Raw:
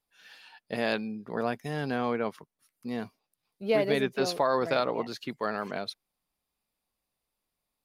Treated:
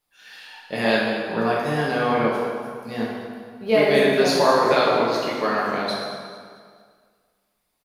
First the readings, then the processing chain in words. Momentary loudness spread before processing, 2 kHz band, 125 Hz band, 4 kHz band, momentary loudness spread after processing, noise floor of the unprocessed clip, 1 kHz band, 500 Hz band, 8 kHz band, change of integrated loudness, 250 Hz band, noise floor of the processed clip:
12 LU, +11.0 dB, +8.0 dB, +10.5 dB, 17 LU, -85 dBFS, +10.5 dB, +9.5 dB, +10.5 dB, +9.5 dB, +8.5 dB, -73 dBFS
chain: bass shelf 430 Hz -3.5 dB; feedback delay 220 ms, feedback 45%, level -15 dB; plate-style reverb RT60 1.8 s, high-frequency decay 0.7×, DRR -5.5 dB; trim +4.5 dB

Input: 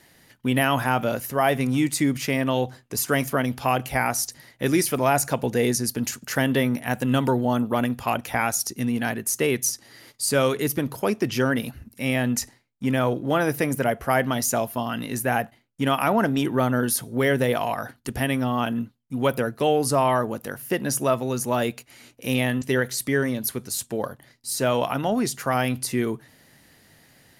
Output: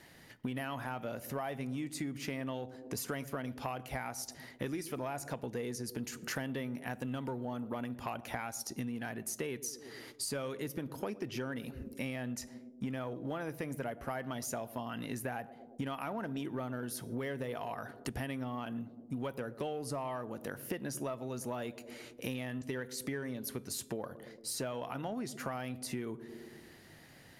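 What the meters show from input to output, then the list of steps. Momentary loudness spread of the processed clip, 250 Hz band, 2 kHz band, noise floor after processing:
5 LU, -15.0 dB, -16.5 dB, -56 dBFS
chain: treble shelf 5.7 kHz -7 dB; in parallel at -7 dB: one-sided clip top -17.5 dBFS; on the sum: feedback comb 160 Hz, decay 0.4 s, harmonics all, mix 30%; band-passed feedback delay 114 ms, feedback 64%, band-pass 320 Hz, level -16.5 dB; compression 10:1, threshold -34 dBFS, peak gain reduction 18.5 dB; trim -1.5 dB

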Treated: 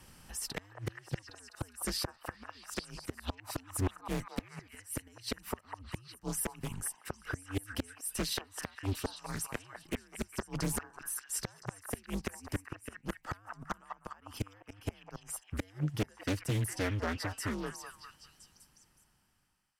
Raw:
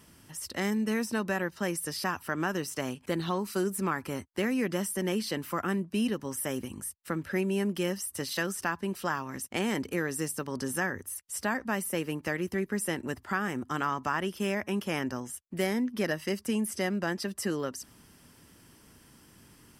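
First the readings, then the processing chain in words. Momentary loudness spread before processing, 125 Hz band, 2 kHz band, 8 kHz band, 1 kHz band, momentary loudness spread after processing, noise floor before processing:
5 LU, -1.0 dB, -10.0 dB, -3.0 dB, -9.5 dB, 11 LU, -58 dBFS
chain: fade out at the end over 4.56 s; inverted gate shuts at -21 dBFS, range -31 dB; frequency shift -100 Hz; repeats whose band climbs or falls 203 ms, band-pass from 900 Hz, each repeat 0.7 oct, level -2 dB; loudspeaker Doppler distortion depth 0.74 ms; trim +1 dB

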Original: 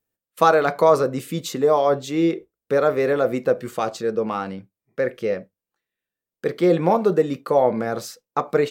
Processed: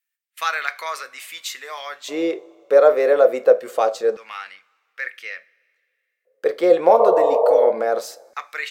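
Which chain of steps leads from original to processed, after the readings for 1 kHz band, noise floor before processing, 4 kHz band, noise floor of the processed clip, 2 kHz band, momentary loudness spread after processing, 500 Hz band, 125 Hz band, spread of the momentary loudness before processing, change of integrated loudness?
-0.5 dB, under -85 dBFS, +2.0 dB, -76 dBFS, +2.5 dB, 19 LU, +2.5 dB, under -20 dB, 12 LU, +3.0 dB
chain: two-slope reverb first 0.28 s, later 2.2 s, from -19 dB, DRR 14.5 dB; spectral replace 7.02–7.64 s, 420–1200 Hz both; LFO high-pass square 0.24 Hz 540–2000 Hz

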